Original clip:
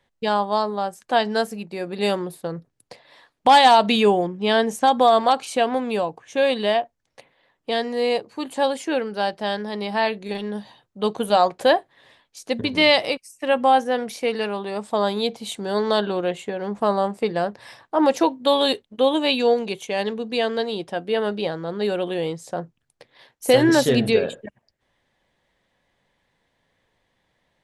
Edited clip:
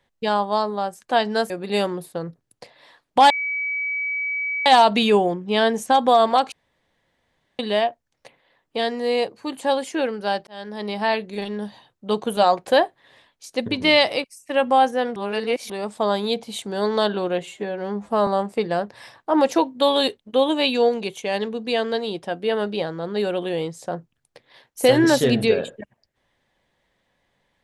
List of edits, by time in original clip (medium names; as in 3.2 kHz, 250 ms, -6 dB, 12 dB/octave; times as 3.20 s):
1.50–1.79 s: delete
3.59 s: add tone 2.28 kHz -22.5 dBFS 1.36 s
5.45–6.52 s: room tone
9.40–9.78 s: fade in
14.09–14.63 s: reverse
16.36–16.92 s: stretch 1.5×